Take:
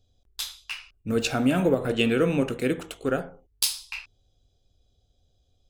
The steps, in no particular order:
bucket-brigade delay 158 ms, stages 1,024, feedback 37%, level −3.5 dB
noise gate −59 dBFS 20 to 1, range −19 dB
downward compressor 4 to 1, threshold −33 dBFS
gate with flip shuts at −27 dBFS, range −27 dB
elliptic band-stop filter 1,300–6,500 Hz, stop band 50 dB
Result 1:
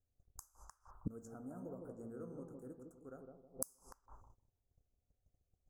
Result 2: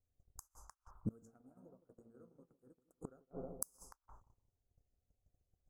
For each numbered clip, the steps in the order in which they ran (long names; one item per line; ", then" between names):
bucket-brigade delay, then noise gate, then gate with flip, then downward compressor, then elliptic band-stop filter
downward compressor, then bucket-brigade delay, then gate with flip, then elliptic band-stop filter, then noise gate